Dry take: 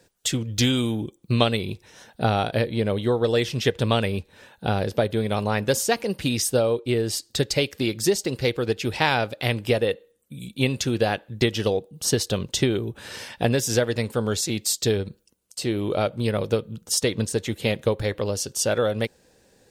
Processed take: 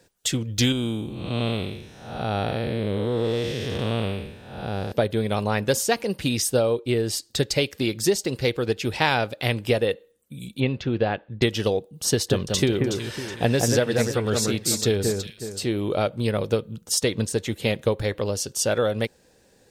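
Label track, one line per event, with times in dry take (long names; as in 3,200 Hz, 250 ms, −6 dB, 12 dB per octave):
0.720000	4.920000	spectrum smeared in time width 297 ms
10.600000	11.420000	high-frequency loss of the air 300 metres
12.100000	15.650000	delay that swaps between a low-pass and a high-pass 185 ms, split 2,100 Hz, feedback 58%, level −3 dB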